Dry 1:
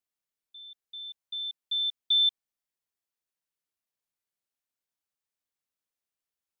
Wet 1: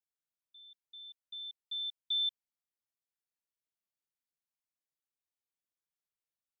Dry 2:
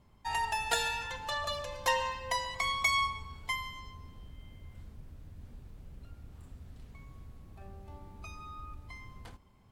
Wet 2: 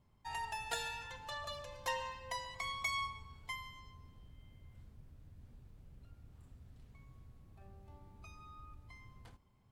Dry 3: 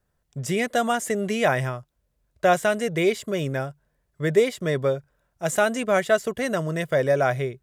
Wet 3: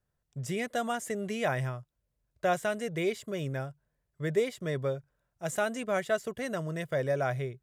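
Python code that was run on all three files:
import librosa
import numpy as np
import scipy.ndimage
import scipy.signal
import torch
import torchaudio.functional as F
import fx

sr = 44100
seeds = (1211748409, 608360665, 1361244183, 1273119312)

y = fx.peak_eq(x, sr, hz=120.0, db=5.0, octaves=0.58)
y = y * 10.0 ** (-9.0 / 20.0)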